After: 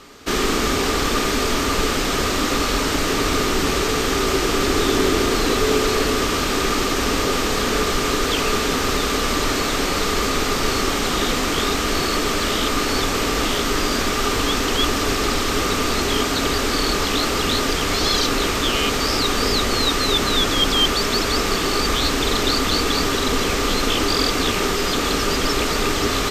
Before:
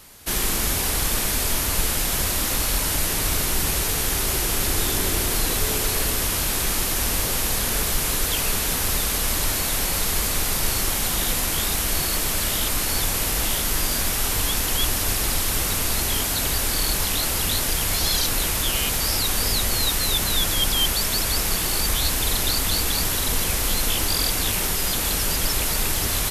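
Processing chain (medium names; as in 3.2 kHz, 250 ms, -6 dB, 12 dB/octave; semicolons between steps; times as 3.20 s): boxcar filter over 4 samples; bass shelf 430 Hz -6 dB; small resonant body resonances 280/400/1200 Hz, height 12 dB, ringing for 35 ms; trim +5.5 dB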